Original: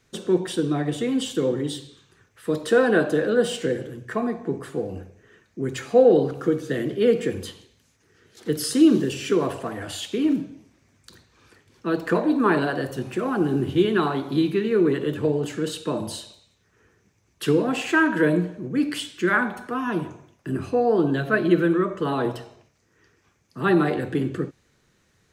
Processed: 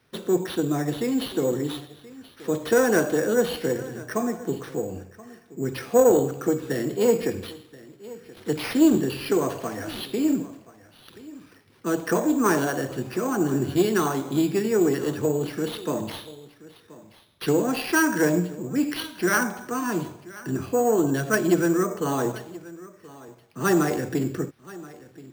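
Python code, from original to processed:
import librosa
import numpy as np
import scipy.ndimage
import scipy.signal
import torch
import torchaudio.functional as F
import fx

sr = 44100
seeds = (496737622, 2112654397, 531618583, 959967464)

y = fx.diode_clip(x, sr, knee_db=-11.5)
y = scipy.signal.sosfilt(scipy.signal.butter(2, 84.0, 'highpass', fs=sr, output='sos'), y)
y = y + 10.0 ** (-19.5 / 20.0) * np.pad(y, (int(1028 * sr / 1000.0), 0))[:len(y)]
y = fx.dynamic_eq(y, sr, hz=5500.0, q=2.0, threshold_db=-54.0, ratio=4.0, max_db=-7)
y = np.repeat(y[::6], 6)[:len(y)]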